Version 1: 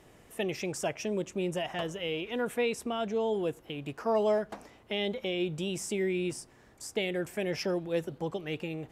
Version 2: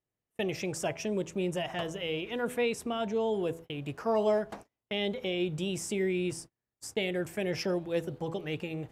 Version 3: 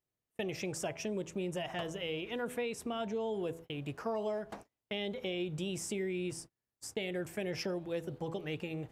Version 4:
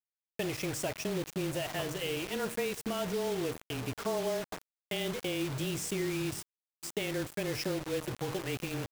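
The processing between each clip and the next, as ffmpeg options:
-af "bandreject=f=82.67:t=h:w=4,bandreject=f=165.34:t=h:w=4,bandreject=f=248.01:t=h:w=4,bandreject=f=330.68:t=h:w=4,bandreject=f=413.35:t=h:w=4,bandreject=f=496.02:t=h:w=4,bandreject=f=578.69:t=h:w=4,bandreject=f=661.36:t=h:w=4,bandreject=f=744.03:t=h:w=4,bandreject=f=826.7:t=h:w=4,bandreject=f=909.37:t=h:w=4,bandreject=f=992.04:t=h:w=4,bandreject=f=1074.71:t=h:w=4,agate=range=0.0178:threshold=0.00562:ratio=16:detection=peak,equalizer=f=110:w=1.6:g=5.5"
-af "acompressor=threshold=0.0316:ratio=6,volume=0.75"
-filter_complex "[0:a]asplit=2[s0][s1];[s1]adelay=689,lowpass=f=1900:p=1,volume=0.141,asplit=2[s2][s3];[s3]adelay=689,lowpass=f=1900:p=1,volume=0.37,asplit=2[s4][s5];[s5]adelay=689,lowpass=f=1900:p=1,volume=0.37[s6];[s0][s2][s4][s6]amix=inputs=4:normalize=0,afreqshift=-20,acrusher=bits=6:mix=0:aa=0.000001,volume=1.33"

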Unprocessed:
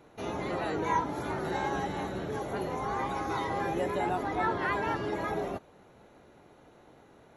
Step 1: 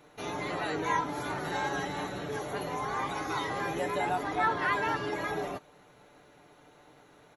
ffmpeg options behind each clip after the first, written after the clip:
-af "tiltshelf=f=970:g=-4,aecho=1:1:6.8:0.42"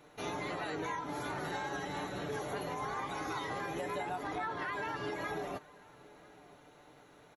-filter_complex "[0:a]alimiter=level_in=1.5:limit=0.0631:level=0:latency=1:release=173,volume=0.668,asplit=2[s0][s1];[s1]adelay=991.3,volume=0.0891,highshelf=f=4000:g=-22.3[s2];[s0][s2]amix=inputs=2:normalize=0,volume=0.841"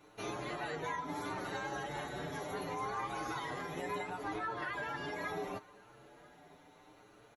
-filter_complex "[0:a]asplit=2[s0][s1];[s1]adelay=7.2,afreqshift=0.72[s2];[s0][s2]amix=inputs=2:normalize=1,volume=1.19"

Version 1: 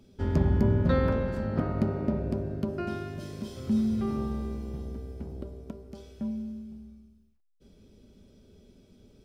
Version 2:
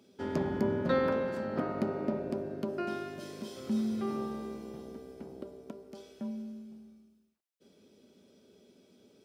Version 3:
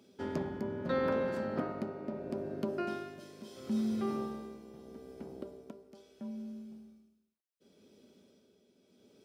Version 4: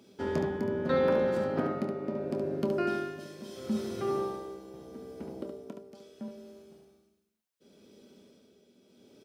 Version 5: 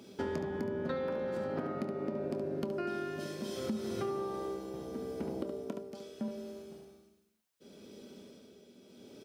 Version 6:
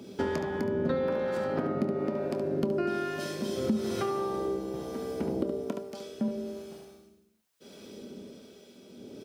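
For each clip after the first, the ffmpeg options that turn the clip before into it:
-af "highpass=270"
-af "tremolo=f=0.75:d=0.6"
-af "aecho=1:1:25|71:0.266|0.501,volume=1.58"
-af "acompressor=threshold=0.0141:ratio=16,volume=1.78"
-filter_complex "[0:a]acrossover=split=570[s0][s1];[s0]aeval=exprs='val(0)*(1-0.5/2+0.5/2*cos(2*PI*1.1*n/s))':c=same[s2];[s1]aeval=exprs='val(0)*(1-0.5/2-0.5/2*cos(2*PI*1.1*n/s))':c=same[s3];[s2][s3]amix=inputs=2:normalize=0,volume=2.66"

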